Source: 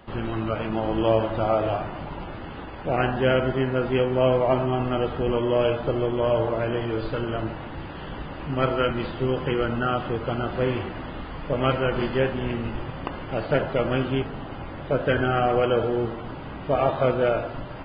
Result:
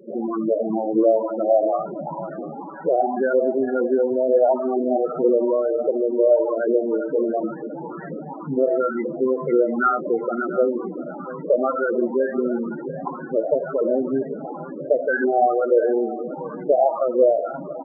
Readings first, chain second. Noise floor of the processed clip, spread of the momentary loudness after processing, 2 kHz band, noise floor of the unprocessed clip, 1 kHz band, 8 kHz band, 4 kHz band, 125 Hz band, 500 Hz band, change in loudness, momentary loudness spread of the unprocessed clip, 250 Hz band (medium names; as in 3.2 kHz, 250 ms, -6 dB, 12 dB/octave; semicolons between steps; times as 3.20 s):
-34 dBFS, 13 LU, -1.0 dB, -37 dBFS, +2.5 dB, no reading, under -40 dB, -14.0 dB, +5.0 dB, +3.5 dB, 14 LU, +3.0 dB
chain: Chebyshev band-pass 160–4100 Hz, order 4; compression, threshold -23 dBFS, peak gain reduction 7.5 dB; LFO low-pass saw up 2.1 Hz 430–2300 Hz; loudest bins only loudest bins 8; feedback delay 690 ms, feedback 24%, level -16.5 dB; trim +6 dB